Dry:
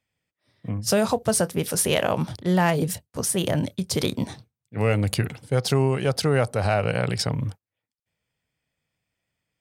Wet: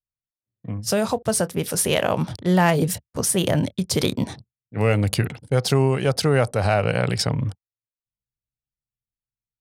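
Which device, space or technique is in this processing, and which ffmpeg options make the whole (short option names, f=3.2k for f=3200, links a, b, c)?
voice memo with heavy noise removal: -af "anlmdn=0.0251,dynaudnorm=f=950:g=5:m=11.5dB,volume=-1dB"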